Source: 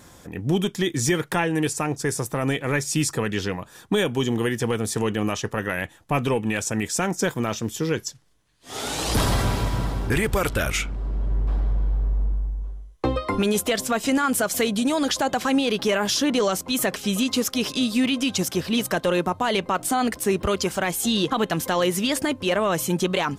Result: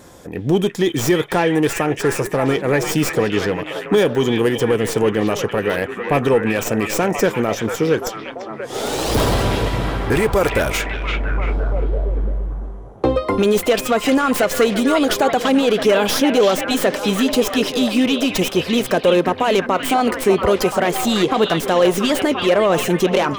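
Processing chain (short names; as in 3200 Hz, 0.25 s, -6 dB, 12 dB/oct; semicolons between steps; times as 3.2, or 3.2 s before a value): tracing distortion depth 0.095 ms; bell 480 Hz +7.5 dB 1.5 oct; in parallel at -10 dB: hard clip -16 dBFS, distortion -11 dB; on the sum: delay with a stepping band-pass 0.342 s, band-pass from 2600 Hz, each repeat -0.7 oct, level -1 dB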